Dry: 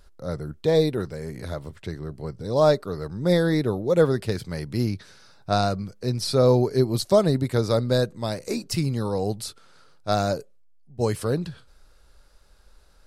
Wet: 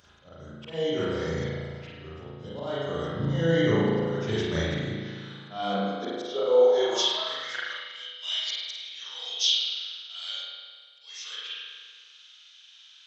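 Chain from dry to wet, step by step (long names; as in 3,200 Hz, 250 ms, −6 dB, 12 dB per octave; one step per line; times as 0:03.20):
hearing-aid frequency compression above 2,000 Hz 1.5 to 1
spectral tilt +2.5 dB per octave
volume swells 715 ms
flutter between parallel walls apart 8.6 metres, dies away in 0.38 s
spring reverb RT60 1.7 s, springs 36 ms, chirp 20 ms, DRR −8.5 dB
high-pass filter sweep 92 Hz → 3,000 Hz, 0:05.05–0:08.26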